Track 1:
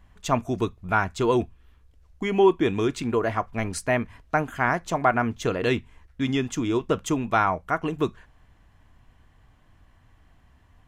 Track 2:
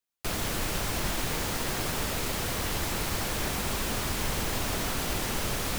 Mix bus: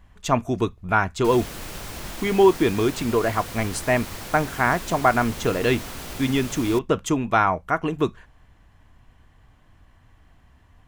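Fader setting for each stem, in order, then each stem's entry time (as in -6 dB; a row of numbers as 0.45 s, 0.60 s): +2.5 dB, -5.0 dB; 0.00 s, 1.00 s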